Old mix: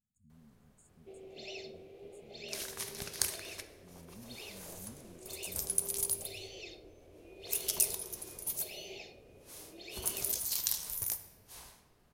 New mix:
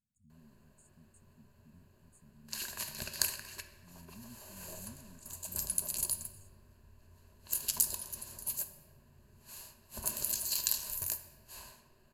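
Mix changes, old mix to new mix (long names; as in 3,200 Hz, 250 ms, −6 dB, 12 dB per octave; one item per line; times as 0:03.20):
first sound: muted
second sound: add EQ curve with evenly spaced ripples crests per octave 1.4, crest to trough 11 dB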